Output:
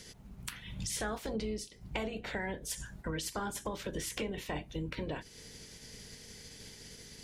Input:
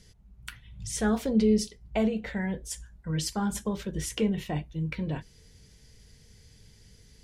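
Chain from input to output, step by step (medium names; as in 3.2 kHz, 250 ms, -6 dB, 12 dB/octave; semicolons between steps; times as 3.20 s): spectral peaks clipped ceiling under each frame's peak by 16 dB; compression 6:1, threshold -38 dBFS, peak gain reduction 18 dB; saturation -25 dBFS, distortion -27 dB; trim +3.5 dB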